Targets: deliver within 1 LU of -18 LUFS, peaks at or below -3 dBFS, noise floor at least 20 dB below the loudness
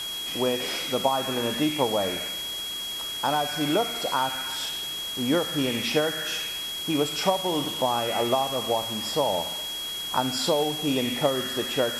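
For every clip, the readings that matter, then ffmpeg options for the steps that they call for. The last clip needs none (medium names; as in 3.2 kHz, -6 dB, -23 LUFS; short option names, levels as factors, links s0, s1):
steady tone 3.3 kHz; tone level -31 dBFS; noise floor -33 dBFS; noise floor target -46 dBFS; loudness -26.0 LUFS; peak level -9.0 dBFS; loudness target -18.0 LUFS
-> -af "bandreject=f=3300:w=30"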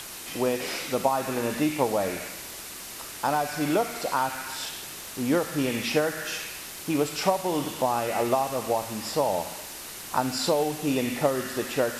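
steady tone not found; noise floor -40 dBFS; noise floor target -48 dBFS
-> -af "afftdn=nr=8:nf=-40"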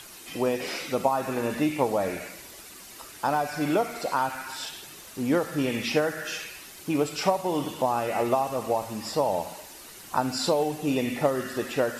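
noise floor -46 dBFS; noise floor target -48 dBFS
-> -af "afftdn=nr=6:nf=-46"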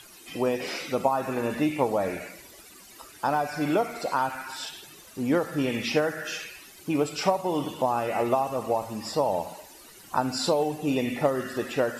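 noise floor -50 dBFS; loudness -27.5 LUFS; peak level -9.0 dBFS; loudness target -18.0 LUFS
-> -af "volume=2.99,alimiter=limit=0.708:level=0:latency=1"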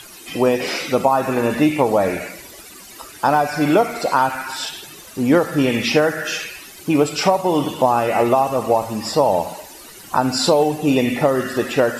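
loudness -18.5 LUFS; peak level -3.0 dBFS; noise floor -40 dBFS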